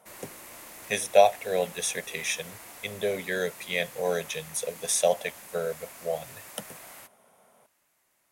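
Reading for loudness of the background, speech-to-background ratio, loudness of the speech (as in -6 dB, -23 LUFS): -44.0 LUFS, 16.0 dB, -28.0 LUFS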